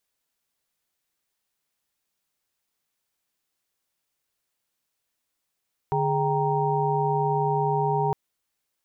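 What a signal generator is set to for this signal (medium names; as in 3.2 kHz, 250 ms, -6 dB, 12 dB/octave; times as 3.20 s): chord D3/G#4/G5/A#5 sine, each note -26.5 dBFS 2.21 s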